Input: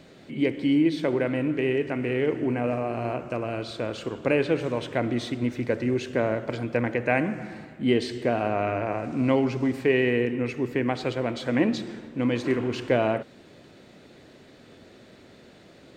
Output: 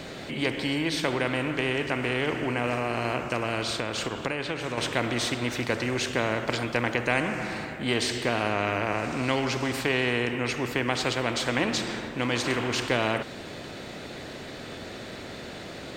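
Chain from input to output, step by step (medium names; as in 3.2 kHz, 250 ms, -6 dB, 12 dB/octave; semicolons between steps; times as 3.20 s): 3.63–4.78 s: compression 6:1, threshold -30 dBFS, peak gain reduction 12 dB; spectrum-flattening compressor 2:1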